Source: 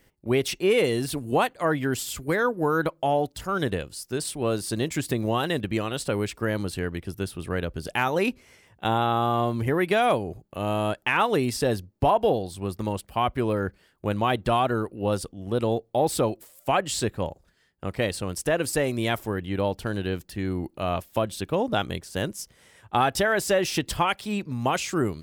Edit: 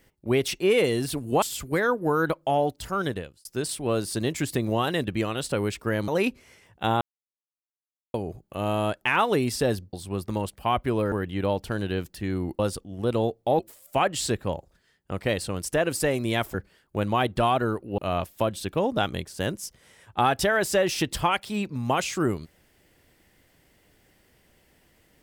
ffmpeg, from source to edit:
ffmpeg -i in.wav -filter_complex "[0:a]asplit=12[link_01][link_02][link_03][link_04][link_05][link_06][link_07][link_08][link_09][link_10][link_11][link_12];[link_01]atrim=end=1.422[link_13];[link_02]atrim=start=1.978:end=4.01,asetpts=PTS-STARTPTS,afade=type=out:start_time=1.542:duration=0.49[link_14];[link_03]atrim=start=4.01:end=6.642,asetpts=PTS-STARTPTS,afade=type=in:duration=0.004:curve=hsin[link_15];[link_04]atrim=start=8.088:end=9.02,asetpts=PTS-STARTPTS,afade=type=out:start_time=0.928:duration=0.004:curve=hsin[link_16];[link_05]atrim=start=9.02:end=10.15,asetpts=PTS-STARTPTS,volume=0[link_17];[link_06]atrim=start=10.15:end=11.942,asetpts=PTS-STARTPTS,afade=type=in:duration=0.004:curve=hsin[link_18];[link_07]atrim=start=12.438:end=13.632[link_19];[link_08]atrim=start=19.268:end=20.742[link_20];[link_09]atrim=start=15.068:end=16.072[link_21];[link_10]atrim=start=16.318:end=19.272[link_22];[link_11]atrim=start=13.628:end=15.072[link_23];[link_12]atrim=start=20.738[link_24];[link_14][link_15]concat=n=2:v=0:a=1[link_25];[link_13][link_25]acrossfade=duration=0.004:curve1=hsin:curve2=hsin[link_26];[link_16][link_17][link_18]concat=n=3:v=0:a=1[link_27];[link_26][link_27]acrossfade=duration=0.004:curve1=hsin:curve2=hsin[link_28];[link_28][link_19]acrossfade=duration=0.004:curve1=hsin:curve2=hsin[link_29];[link_29][link_20]acrossfade=duration=0.004:curve1=hsin:curve2=hsin[link_30];[link_30][link_21]acrossfade=duration=0.004:curve1=hsin:curve2=hsin[link_31];[link_31][link_22]acrossfade=duration=0.004:curve1=hsin:curve2=hsin[link_32];[link_32][link_23]acrossfade=duration=0.004:curve1=hsin:curve2=hsin[link_33];[link_33][link_24]acrossfade=duration=0.004:curve1=hsin:curve2=hsin" out.wav

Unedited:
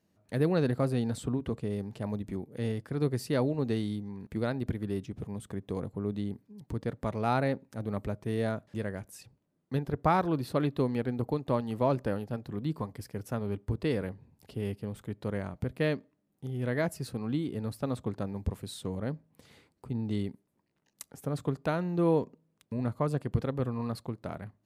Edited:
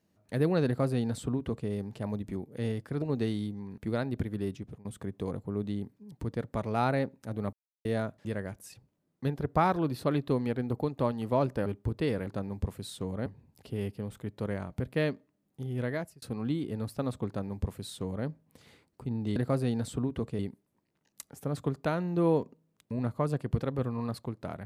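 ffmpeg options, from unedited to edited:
ffmpeg -i in.wav -filter_complex "[0:a]asplit=11[link_01][link_02][link_03][link_04][link_05][link_06][link_07][link_08][link_09][link_10][link_11];[link_01]atrim=end=3.022[link_12];[link_02]atrim=start=3.508:end=5.34,asetpts=PTS-STARTPTS,afade=type=out:start_time=1.552:duration=0.28:silence=0.0749894[link_13];[link_03]atrim=start=5.34:end=8.02,asetpts=PTS-STARTPTS,afade=type=in:duration=0.004:curve=hsin:silence=0.0749894,afade=type=out:start_time=2.676:duration=0.004:curve=hsin[link_14];[link_04]atrim=start=8.02:end=8.34,asetpts=PTS-STARTPTS,volume=0[link_15];[link_05]atrim=start=8.34:end=12.152,asetpts=PTS-STARTPTS,afade=type=in:duration=0.004:curve=hsin[link_16];[link_06]atrim=start=13.488:end=14.102[link_17];[link_07]atrim=start=18.108:end=19.102[link_18];[link_08]atrim=start=14.098:end=17.06,asetpts=PTS-STARTPTS,afade=type=out:start_time=2.542:duration=0.42[link_19];[link_09]atrim=start=17.06:end=20.202,asetpts=PTS-STARTPTS,afade=type=in:duration=0.004:curve=hsin[link_20];[link_10]atrim=start=0.658:end=1.692[link_21];[link_11]atrim=start=20.198[link_22];[link_13][link_14][link_15][link_16]concat=n=4:v=0:a=1[link_23];[link_12][link_23]acrossfade=duration=0.004:curve1=hsin:curve2=hsin[link_24];[link_24][link_17]acrossfade=duration=0.004:curve1=hsin:curve2=hsin[link_25];[link_25][link_18]acrossfade=duration=0.004:curve1=hsin:curve2=hsin[link_26];[link_19][link_20]concat=n=2:v=0:a=1[link_27];[link_26][link_27]acrossfade=duration=0.004:curve1=hsin:curve2=hsin[link_28];[link_28][link_21]acrossfade=duration=0.004:curve1=hsin:curve2=hsin[link_29];[link_29][link_22]acrossfade=duration=0.004:curve1=hsin:curve2=hsin" out.wav

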